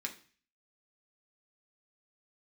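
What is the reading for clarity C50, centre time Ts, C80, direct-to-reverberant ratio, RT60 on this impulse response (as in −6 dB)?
13.0 dB, 10 ms, 17.5 dB, 0.5 dB, 0.40 s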